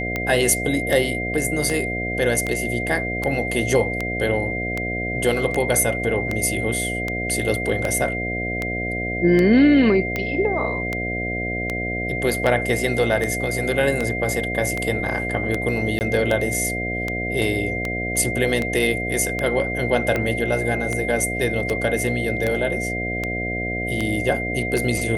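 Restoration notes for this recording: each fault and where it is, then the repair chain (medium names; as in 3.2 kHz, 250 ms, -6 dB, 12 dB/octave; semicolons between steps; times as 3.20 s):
buzz 60 Hz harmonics 12 -28 dBFS
tick 78 rpm -10 dBFS
whine 2.1 kHz -26 dBFS
15.99–16.01 s: dropout 19 ms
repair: de-click; de-hum 60 Hz, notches 12; band-stop 2.1 kHz, Q 30; interpolate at 15.99 s, 19 ms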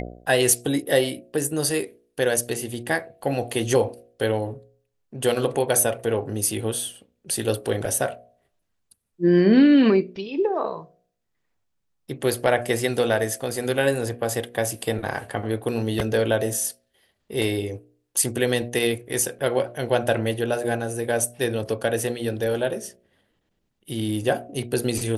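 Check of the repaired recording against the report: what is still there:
nothing left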